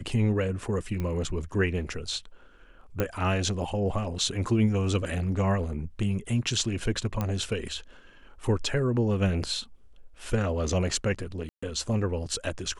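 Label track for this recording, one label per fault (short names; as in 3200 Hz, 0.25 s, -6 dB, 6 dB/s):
1.000000	1.000000	pop -20 dBFS
3.000000	3.000000	pop -13 dBFS
7.210000	7.210000	pop -16 dBFS
11.490000	11.620000	gap 0.135 s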